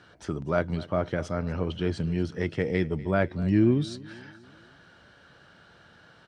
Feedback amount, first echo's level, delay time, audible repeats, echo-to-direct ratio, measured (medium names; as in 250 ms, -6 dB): 47%, -19.5 dB, 244 ms, 3, -18.5 dB